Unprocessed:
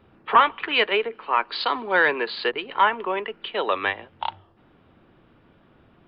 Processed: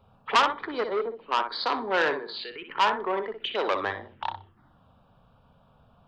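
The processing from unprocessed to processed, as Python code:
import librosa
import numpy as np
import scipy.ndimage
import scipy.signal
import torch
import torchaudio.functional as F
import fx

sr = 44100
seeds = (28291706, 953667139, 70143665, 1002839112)

y = fx.peak_eq(x, sr, hz=2100.0, db=fx.line((0.66, -6.0), (1.3, -14.0)), octaves=1.9, at=(0.66, 1.3), fade=0.02)
y = fx.level_steps(y, sr, step_db=18, at=(2.13, 2.68), fade=0.02)
y = fx.env_phaser(y, sr, low_hz=310.0, high_hz=2700.0, full_db=-25.5)
y = fx.high_shelf(y, sr, hz=3200.0, db=6.0, at=(3.4, 3.8))
y = fx.echo_feedback(y, sr, ms=62, feedback_pct=17, wet_db=-8.5)
y = fx.transformer_sat(y, sr, knee_hz=2300.0)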